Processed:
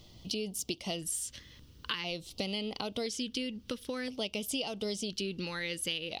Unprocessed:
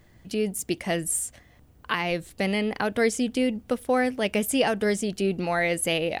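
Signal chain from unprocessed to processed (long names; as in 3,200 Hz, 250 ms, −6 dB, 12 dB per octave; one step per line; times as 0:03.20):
flat-topped bell 4,100 Hz +12.5 dB 1.3 octaves
downward compressor 5 to 1, threshold −33 dBFS, peak gain reduction 17 dB
auto-filter notch square 0.49 Hz 710–1,700 Hz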